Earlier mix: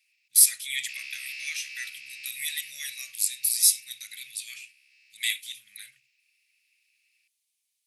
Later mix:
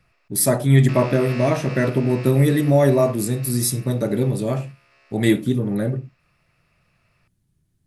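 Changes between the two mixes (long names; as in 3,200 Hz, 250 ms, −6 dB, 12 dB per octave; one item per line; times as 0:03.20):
speech −4.5 dB
master: remove elliptic high-pass filter 2,300 Hz, stop band 60 dB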